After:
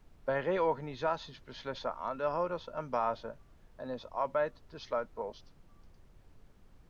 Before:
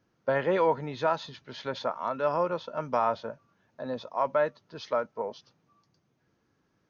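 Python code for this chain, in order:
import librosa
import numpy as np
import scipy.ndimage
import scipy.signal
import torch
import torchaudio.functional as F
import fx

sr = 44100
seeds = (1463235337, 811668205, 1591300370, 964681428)

y = fx.dmg_noise_colour(x, sr, seeds[0], colour='brown', level_db=-51.0)
y = y * 10.0 ** (-5.5 / 20.0)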